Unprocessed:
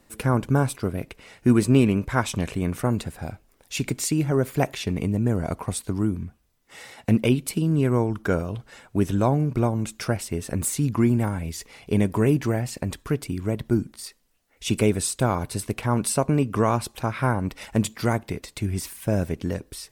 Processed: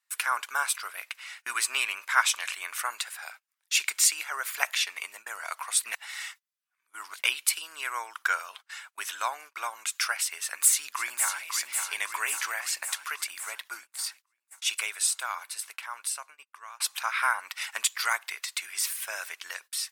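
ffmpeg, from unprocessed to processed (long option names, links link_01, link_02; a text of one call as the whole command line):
ffmpeg -i in.wav -filter_complex "[0:a]asplit=2[link_01][link_02];[link_02]afade=type=in:start_time=10.39:duration=0.01,afade=type=out:start_time=11.42:duration=0.01,aecho=0:1:550|1100|1650|2200|2750|3300|3850|4400|4950|5500|6050:0.473151|0.331206|0.231844|0.162291|0.113604|0.0795225|0.0556658|0.038966|0.0272762|0.0190934|0.0133654[link_03];[link_01][link_03]amix=inputs=2:normalize=0,asplit=4[link_04][link_05][link_06][link_07];[link_04]atrim=end=5.842[link_08];[link_05]atrim=start=5.838:end=7.192,asetpts=PTS-STARTPTS,areverse[link_09];[link_06]atrim=start=7.188:end=16.8,asetpts=PTS-STARTPTS,afade=type=out:start_time=6.232:duration=3.38:silence=0.0749894[link_10];[link_07]atrim=start=16.8,asetpts=PTS-STARTPTS,afade=type=in:duration=0.004:curve=hsin:silence=0.0749894[link_11];[link_08][link_09]acrossfade=duration=0.004:curve1=hsin:curve2=hsin[link_12];[link_10][link_11]concat=n=2:v=0:a=1[link_13];[link_12][link_13]acrossfade=duration=0.004:curve1=hsin:curve2=hsin,highpass=frequency=1200:width=0.5412,highpass=frequency=1200:width=1.3066,agate=range=-23dB:threshold=-53dB:ratio=16:detection=peak,volume=6.5dB" out.wav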